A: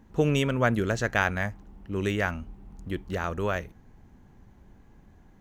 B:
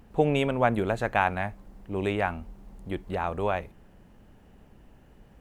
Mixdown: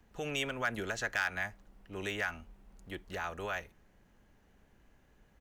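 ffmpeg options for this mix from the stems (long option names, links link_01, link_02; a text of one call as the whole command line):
ffmpeg -i stem1.wav -i stem2.wav -filter_complex "[0:a]highpass=frequency=1300:width=0.5412,highpass=frequency=1300:width=1.3066,asoftclip=type=hard:threshold=-18.5dB,volume=-4dB[link_01];[1:a]equalizer=frequency=150:width_type=o:width=2.1:gain=-3,alimiter=limit=-18.5dB:level=0:latency=1:release=82,adelay=5.4,volume=-10dB[link_02];[link_01][link_02]amix=inputs=2:normalize=0" out.wav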